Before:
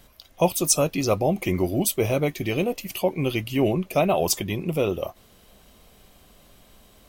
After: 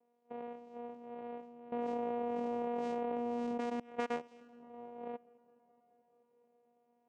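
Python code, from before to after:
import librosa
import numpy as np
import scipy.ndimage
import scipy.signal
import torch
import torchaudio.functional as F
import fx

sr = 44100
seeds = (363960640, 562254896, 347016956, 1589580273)

y = fx.spec_blur(x, sr, span_ms=136.0)
y = fx.peak_eq(y, sr, hz=210.0, db=-13.5, octaves=0.22)
y = fx.level_steps(y, sr, step_db=24)
y = fx.auto_wah(y, sr, base_hz=570.0, top_hz=1600.0, q=4.2, full_db=-27.0, direction='up')
y = fx.vocoder(y, sr, bands=4, carrier='saw', carrier_hz=239.0)
y = fx.echo_filtered(y, sr, ms=213, feedback_pct=81, hz=2500.0, wet_db=-23.5)
y = fx.env_flatten(y, sr, amount_pct=100, at=(1.72, 3.8))
y = F.gain(torch.from_numpy(y), 9.5).numpy()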